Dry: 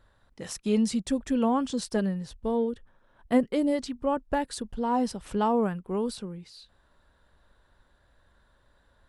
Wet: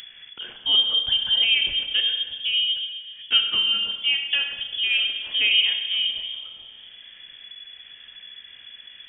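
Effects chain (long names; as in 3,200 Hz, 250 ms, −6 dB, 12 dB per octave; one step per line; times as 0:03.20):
four-comb reverb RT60 1.4 s, combs from 26 ms, DRR 4.5 dB
upward compression, threshold −36 dBFS
voice inversion scrambler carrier 3,400 Hz
level +3 dB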